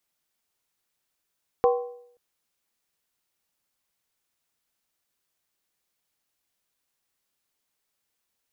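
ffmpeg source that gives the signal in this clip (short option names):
-f lavfi -i "aevalsrc='0.178*pow(10,-3*t/0.68)*sin(2*PI*485*t)+0.0944*pow(10,-3*t/0.539)*sin(2*PI*773.1*t)+0.0501*pow(10,-3*t/0.465)*sin(2*PI*1036*t)+0.0266*pow(10,-3*t/0.449)*sin(2*PI*1113.6*t)':d=0.53:s=44100"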